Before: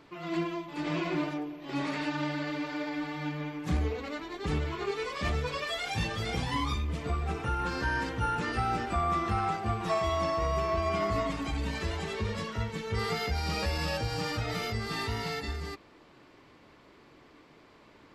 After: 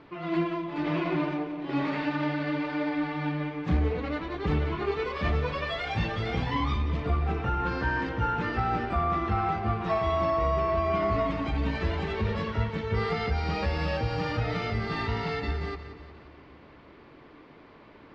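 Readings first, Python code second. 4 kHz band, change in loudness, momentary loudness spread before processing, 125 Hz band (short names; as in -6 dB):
-2.0 dB, +3.0 dB, 6 LU, +4.0 dB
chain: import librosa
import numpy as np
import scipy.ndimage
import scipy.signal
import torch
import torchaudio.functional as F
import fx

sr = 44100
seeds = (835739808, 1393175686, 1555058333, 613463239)

p1 = fx.rider(x, sr, range_db=10, speed_s=0.5)
p2 = x + (p1 * librosa.db_to_amplitude(-1.5))
p3 = fx.air_absorb(p2, sr, metres=240.0)
p4 = fx.echo_split(p3, sr, split_hz=360.0, low_ms=256, high_ms=178, feedback_pct=52, wet_db=-12)
y = p4 * librosa.db_to_amplitude(-1.5)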